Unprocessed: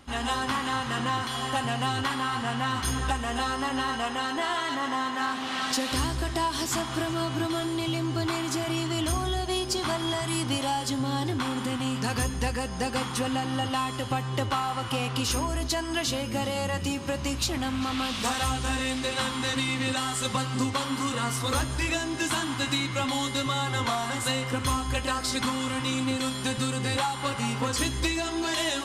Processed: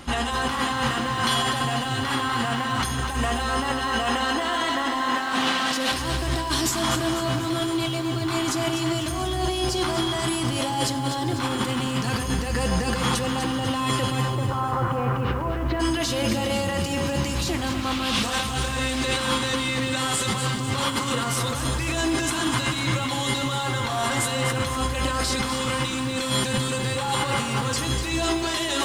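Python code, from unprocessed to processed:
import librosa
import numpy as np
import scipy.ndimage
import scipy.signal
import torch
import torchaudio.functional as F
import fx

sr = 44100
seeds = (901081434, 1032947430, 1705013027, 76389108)

y = fx.lowpass(x, sr, hz=fx.line((14.29, 1300.0), (15.79, 2300.0)), slope=24, at=(14.29, 15.79), fade=0.02)
y = fx.over_compress(y, sr, threshold_db=-33.0, ratio=-1.0)
y = fx.room_shoebox(y, sr, seeds[0], volume_m3=3900.0, walls='furnished', distance_m=0.83)
y = fx.echo_crushed(y, sr, ms=248, feedback_pct=55, bits=9, wet_db=-8.0)
y = y * librosa.db_to_amplitude(7.0)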